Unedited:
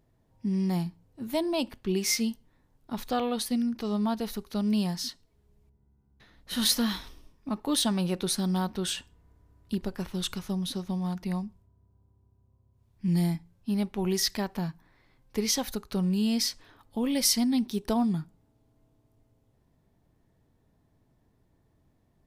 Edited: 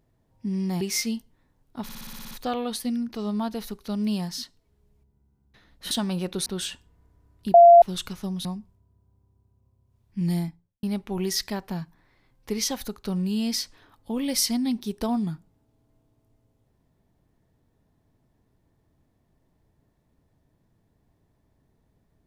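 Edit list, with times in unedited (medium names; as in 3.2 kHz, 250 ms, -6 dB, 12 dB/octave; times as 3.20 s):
0.81–1.95 s: delete
2.97 s: stutter 0.06 s, 9 plays
6.57–7.79 s: delete
8.34–8.72 s: delete
9.80–10.08 s: bleep 688 Hz -7.5 dBFS
10.71–11.32 s: delete
13.21–13.70 s: studio fade out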